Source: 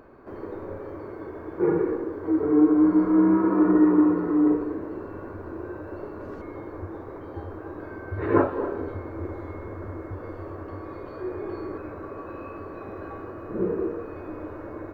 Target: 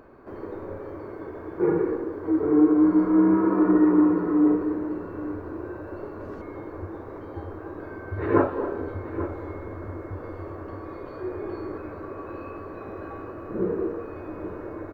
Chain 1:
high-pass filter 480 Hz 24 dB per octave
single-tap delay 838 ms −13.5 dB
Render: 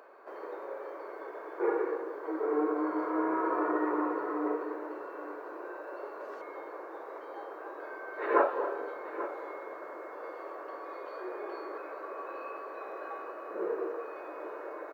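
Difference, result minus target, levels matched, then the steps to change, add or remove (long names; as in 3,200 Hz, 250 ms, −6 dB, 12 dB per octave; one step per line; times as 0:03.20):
500 Hz band +6.0 dB
remove: high-pass filter 480 Hz 24 dB per octave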